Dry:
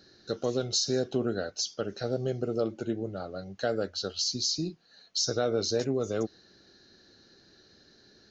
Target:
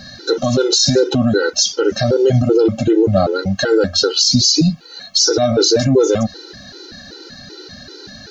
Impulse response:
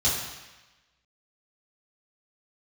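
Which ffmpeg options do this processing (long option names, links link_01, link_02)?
-af "alimiter=level_in=26dB:limit=-1dB:release=50:level=0:latency=1,afftfilt=real='re*gt(sin(2*PI*2.6*pts/sr)*(1-2*mod(floor(b*sr/1024/260),2)),0)':imag='im*gt(sin(2*PI*2.6*pts/sr)*(1-2*mod(floor(b*sr/1024/260),2)),0)':win_size=1024:overlap=0.75"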